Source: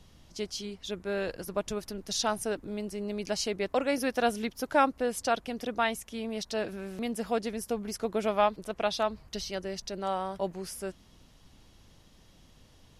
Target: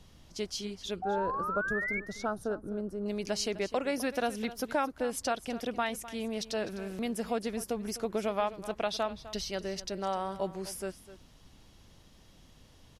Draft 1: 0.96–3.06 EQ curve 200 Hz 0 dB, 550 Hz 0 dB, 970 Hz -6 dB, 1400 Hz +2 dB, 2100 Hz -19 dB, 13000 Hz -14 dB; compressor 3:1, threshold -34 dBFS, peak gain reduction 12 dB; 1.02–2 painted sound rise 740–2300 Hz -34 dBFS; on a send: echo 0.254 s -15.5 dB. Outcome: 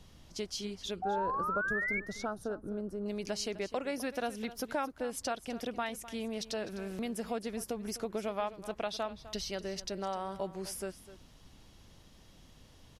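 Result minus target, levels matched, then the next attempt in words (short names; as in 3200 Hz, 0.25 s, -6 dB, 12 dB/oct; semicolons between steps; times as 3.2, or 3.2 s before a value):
compressor: peak gain reduction +4.5 dB
0.96–3.06 EQ curve 200 Hz 0 dB, 550 Hz 0 dB, 970 Hz -6 dB, 1400 Hz +2 dB, 2100 Hz -19 dB, 13000 Hz -14 dB; compressor 3:1, threshold -27.5 dBFS, peak gain reduction 7.5 dB; 1.02–2 painted sound rise 740–2300 Hz -34 dBFS; on a send: echo 0.254 s -15.5 dB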